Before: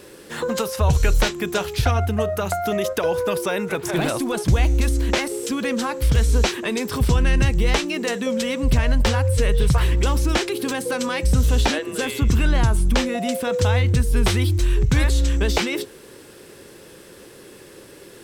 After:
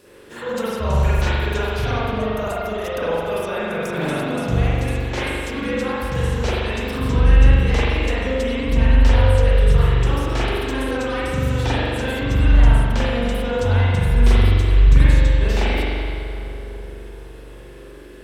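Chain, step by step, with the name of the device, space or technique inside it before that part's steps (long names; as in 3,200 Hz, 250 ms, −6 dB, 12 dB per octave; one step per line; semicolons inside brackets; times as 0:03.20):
dub delay into a spring reverb (feedback echo with a low-pass in the loop 376 ms, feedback 64%, level −13 dB; spring reverb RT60 2.1 s, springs 42 ms, chirp 60 ms, DRR −9.5 dB)
level −9 dB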